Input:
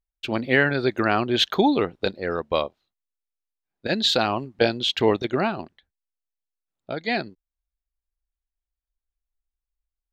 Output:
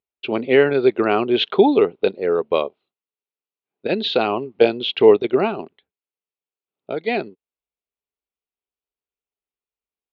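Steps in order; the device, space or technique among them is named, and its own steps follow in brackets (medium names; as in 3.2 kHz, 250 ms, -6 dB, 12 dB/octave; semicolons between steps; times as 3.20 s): kitchen radio (cabinet simulation 170–3400 Hz, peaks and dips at 420 Hz +10 dB, 1.7 kHz -9 dB, 2.6 kHz +3 dB); trim +2 dB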